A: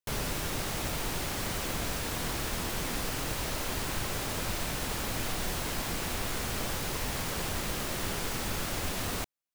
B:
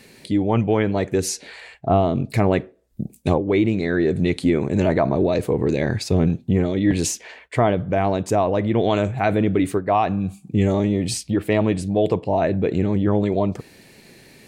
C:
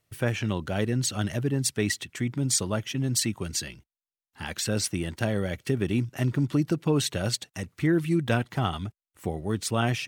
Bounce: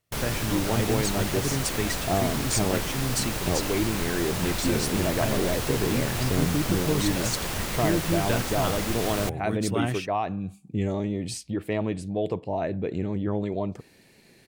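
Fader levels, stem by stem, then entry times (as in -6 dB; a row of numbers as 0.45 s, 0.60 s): +3.0 dB, -8.5 dB, -3.0 dB; 0.05 s, 0.20 s, 0.00 s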